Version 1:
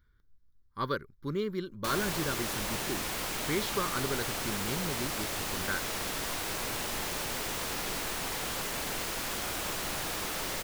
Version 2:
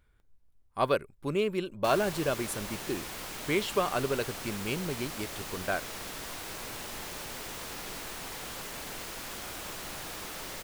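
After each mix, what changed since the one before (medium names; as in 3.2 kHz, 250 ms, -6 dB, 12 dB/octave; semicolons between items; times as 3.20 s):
speech: remove static phaser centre 2.6 kHz, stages 6; background -5.5 dB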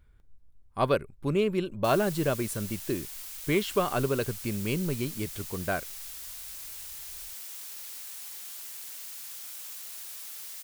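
background: add differentiator; master: add bass shelf 250 Hz +8.5 dB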